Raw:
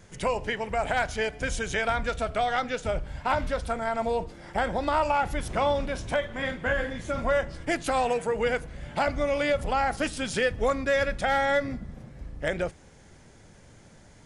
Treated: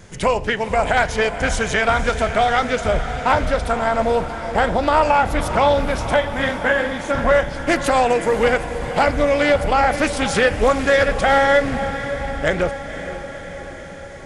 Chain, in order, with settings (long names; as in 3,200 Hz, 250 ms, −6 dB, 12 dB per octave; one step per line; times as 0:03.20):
0:06.49–0:07.15: high-pass filter 190 Hz 24 dB per octave
feedback delay with all-pass diffusion 521 ms, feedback 65%, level −11 dB
highs frequency-modulated by the lows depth 0.2 ms
level +9 dB